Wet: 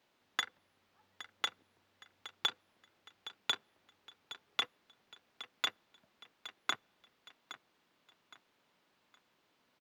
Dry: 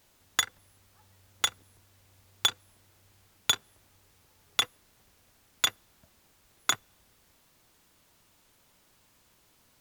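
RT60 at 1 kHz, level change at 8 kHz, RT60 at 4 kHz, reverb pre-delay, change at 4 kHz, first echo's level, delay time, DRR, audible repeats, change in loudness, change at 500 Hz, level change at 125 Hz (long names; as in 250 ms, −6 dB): no reverb audible, −18.0 dB, no reverb audible, no reverb audible, −7.5 dB, −14.5 dB, 816 ms, no reverb audible, 3, −9.5 dB, −6.0 dB, below −15 dB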